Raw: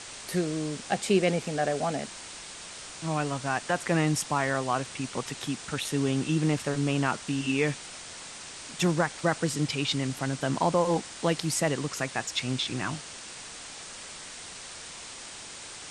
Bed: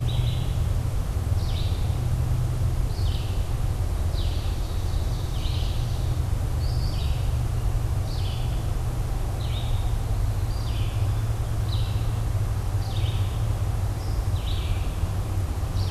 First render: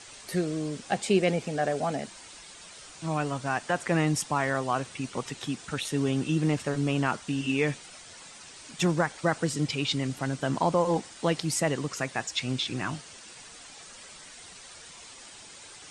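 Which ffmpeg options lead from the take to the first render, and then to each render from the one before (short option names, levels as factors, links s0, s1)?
-af "afftdn=nr=8:nf=-43"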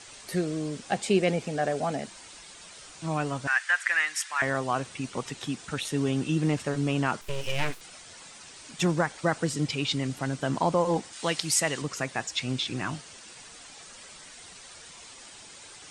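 -filter_complex "[0:a]asettb=1/sr,asplit=3[s0][s1][s2];[s0]atrim=end=3.474[s3];[s1]atrim=start=3.47:end=4.42,asetpts=PTS-STARTPTS,afade=t=in:d=0.004:c=qsin,afade=t=out:st=0.946:d=0.004:c=qsin,highpass=f=1700:t=q:w=3.7[s4];[s2]atrim=start=4.416[s5];[s3][s4]acrossfade=d=0.004:c1=hsin:c2=qsin[s6];[s6][s5]acrossfade=d=0.004:c1=qsin:c2=hsin,asettb=1/sr,asplit=3[s7][s8][s9];[s7]atrim=end=7.214[s10];[s8]atrim=start=7.21:end=7.81,asetpts=PTS-STARTPTS,afade=t=in:d=0.004:c=qsin,afade=t=out:st=0.596:d=0.004:c=qsin,aeval=exprs='abs(val(0))':c=same[s11];[s9]atrim=start=7.806[s12];[s10][s11]acrossfade=d=0.004:c1=hsin:c2=qsin[s13];[s13][s12]acrossfade=d=0.004:c1=qsin:c2=hsin,asettb=1/sr,asplit=3[s14][s15][s16];[s14]atrim=end=11.134[s17];[s15]atrim=start=11.13:end=11.82,asetpts=PTS-STARTPTS,afade=t=in:d=0.004:c=qsin,afade=t=out:st=0.686:d=0.004:c=qsin,tiltshelf=f=970:g=-6[s18];[s16]atrim=start=11.816[s19];[s17][s18]acrossfade=d=0.004:c1=hsin:c2=qsin[s20];[s20][s19]acrossfade=d=0.004:c1=qsin:c2=hsin"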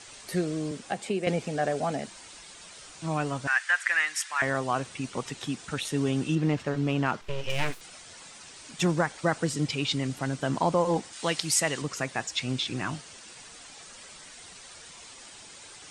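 -filter_complex "[0:a]asettb=1/sr,asplit=3[s0][s1][s2];[s0]atrim=end=0.714[s3];[s1]atrim=start=0.71:end=1.27,asetpts=PTS-STARTPTS,afade=t=in:d=0.004:c=qsin,afade=t=out:st=0.556:d=0.004:c=qsin,acrossover=split=150|3100|7800[s4][s5][s6][s7];[s4]acompressor=threshold=0.00224:ratio=3[s8];[s5]acompressor=threshold=0.0398:ratio=3[s9];[s6]acompressor=threshold=0.00224:ratio=3[s10];[s7]acompressor=threshold=0.00501:ratio=3[s11];[s8][s9][s10][s11]amix=inputs=4:normalize=0[s12];[s2]atrim=start=1.266[s13];[s3][s12]acrossfade=d=0.004:c1=hsin:c2=qsin[s14];[s14][s13]acrossfade=d=0.004:c1=qsin:c2=hsin,asettb=1/sr,asplit=3[s15][s16][s17];[s15]atrim=end=6.354[s18];[s16]atrim=start=6.35:end=7.5,asetpts=PTS-STARTPTS,afade=t=in:d=0.004:c=qsin,afade=t=out:st=1.146:d=0.004:c=qsin,adynamicsmooth=sensitivity=3:basefreq=5000[s19];[s17]atrim=start=7.496[s20];[s18][s19]acrossfade=d=0.004:c1=hsin:c2=qsin[s21];[s21][s20]acrossfade=d=0.004:c1=qsin:c2=hsin"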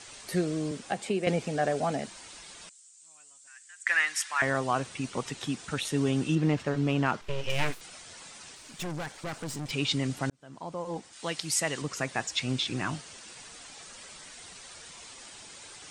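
-filter_complex "[0:a]asettb=1/sr,asplit=3[s0][s1][s2];[s0]atrim=end=2.694[s3];[s1]atrim=start=2.69:end=3.87,asetpts=PTS-STARTPTS,afade=t=in:d=0.004:c=qsin,afade=t=out:st=1.176:d=0.004:c=qsin,bandpass=f=7700:t=q:w=5.6[s4];[s2]atrim=start=3.866[s5];[s3][s4]acrossfade=d=0.004:c1=hsin:c2=qsin[s6];[s6][s5]acrossfade=d=0.004:c1=qsin:c2=hsin,asettb=1/sr,asplit=3[s7][s8][s9];[s7]atrim=end=8.554[s10];[s8]atrim=start=8.55:end=9.71,asetpts=PTS-STARTPTS,afade=t=in:d=0.004:c=qsin,afade=t=out:st=1.156:d=0.004:c=qsin,aeval=exprs='(tanh(44.7*val(0)+0.55)-tanh(0.55))/44.7':c=same[s11];[s9]atrim=start=9.706[s12];[s10][s11]acrossfade=d=0.004:c1=hsin:c2=qsin[s13];[s13][s12]acrossfade=d=0.004:c1=qsin:c2=hsin,asplit=2[s14][s15];[s14]atrim=end=10.3,asetpts=PTS-STARTPTS,afade=t=out:st=10.296:d=0.004:c=hsin[s16];[s15]atrim=start=10.3,asetpts=PTS-STARTPTS,afade=t=in:d=1.87[s17];[s16][s17]concat=n=2:v=0:a=1"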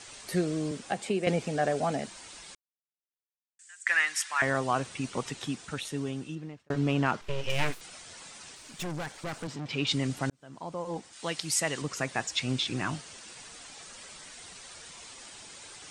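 -filter_complex "[0:a]asettb=1/sr,asplit=3[s0][s1][s2];[s0]atrim=end=9.474[s3];[s1]atrim=start=9.47:end=9.87,asetpts=PTS-STARTPTS,afade=t=in:d=0.004:c=qsin,afade=t=out:st=0.396:d=0.004:c=qsin,highpass=110,lowpass=4500[s4];[s2]atrim=start=9.866[s5];[s3][s4]acrossfade=d=0.004:c1=hsin:c2=qsin[s6];[s6][s5]acrossfade=d=0.004:c1=qsin:c2=hsin,asplit=4[s7][s8][s9][s10];[s7]atrim=end=2.55,asetpts=PTS-STARTPTS,afade=t=out:st=2.546:d=0.004:c=hsin[s11];[s8]atrim=start=2.55:end=3.59,asetpts=PTS-STARTPTS,volume=0[s12];[s9]atrim=start=3.59:end=6.7,asetpts=PTS-STARTPTS,afade=t=in:d=0.004:c=hsin,afade=t=out:st=1.68:d=1.43[s13];[s10]atrim=start=6.7,asetpts=PTS-STARTPTS,afade=t=in:d=0.004:c=hsin[s14];[s11][s12][s13][s14]concat=n=4:v=0:a=1"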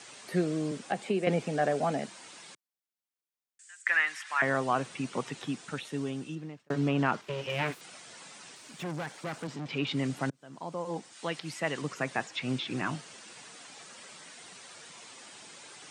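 -filter_complex "[0:a]acrossover=split=3100[s0][s1];[s1]acompressor=threshold=0.00398:ratio=4:attack=1:release=60[s2];[s0][s2]amix=inputs=2:normalize=0,highpass=f=130:w=0.5412,highpass=f=130:w=1.3066"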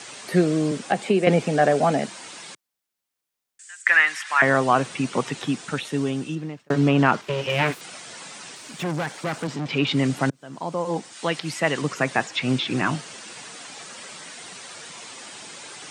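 -af "volume=2.99"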